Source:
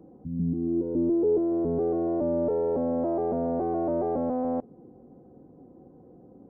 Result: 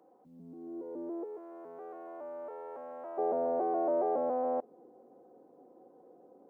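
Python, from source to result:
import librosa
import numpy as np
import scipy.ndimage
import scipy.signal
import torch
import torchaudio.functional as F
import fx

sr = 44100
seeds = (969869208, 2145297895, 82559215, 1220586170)

y = fx.cheby1_highpass(x, sr, hz=fx.steps((0.0, 830.0), (1.23, 1400.0), (3.17, 550.0)), order=2)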